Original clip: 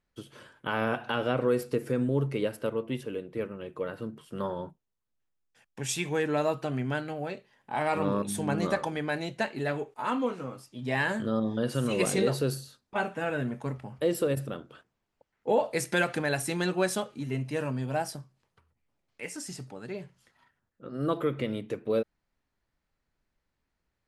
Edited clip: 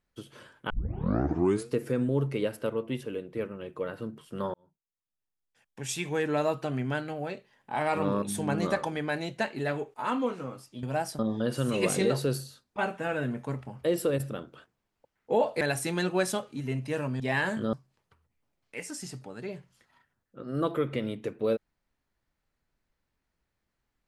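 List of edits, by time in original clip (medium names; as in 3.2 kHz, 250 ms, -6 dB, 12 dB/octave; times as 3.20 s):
0.70 s: tape start 1.01 s
4.54–6.32 s: fade in
10.83–11.36 s: swap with 17.83–18.19 s
15.78–16.24 s: delete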